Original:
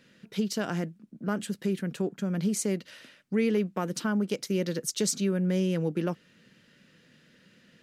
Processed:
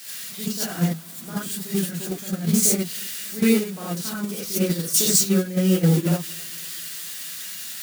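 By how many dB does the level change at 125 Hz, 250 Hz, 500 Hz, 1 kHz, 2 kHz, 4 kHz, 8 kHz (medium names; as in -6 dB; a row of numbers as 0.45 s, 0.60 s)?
+8.0 dB, +6.0 dB, +3.0 dB, +1.5 dB, +4.5 dB, +10.5 dB, +13.0 dB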